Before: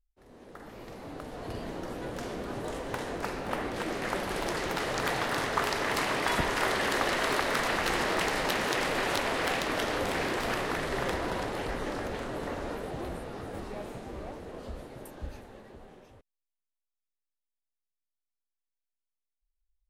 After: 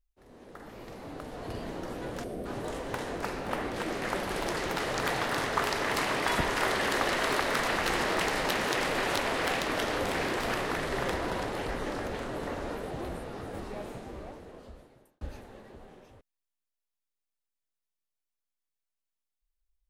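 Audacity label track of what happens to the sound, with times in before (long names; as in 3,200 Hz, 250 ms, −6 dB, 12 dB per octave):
2.240000	2.450000	gain on a spectral selection 760–8,000 Hz −11 dB
13.910000	15.210000	fade out linear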